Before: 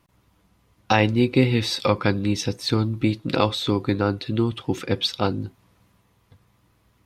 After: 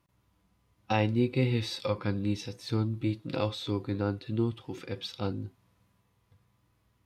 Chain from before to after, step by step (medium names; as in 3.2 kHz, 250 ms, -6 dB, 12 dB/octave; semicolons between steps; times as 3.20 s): harmonic-percussive split percussive -10 dB; trim -6 dB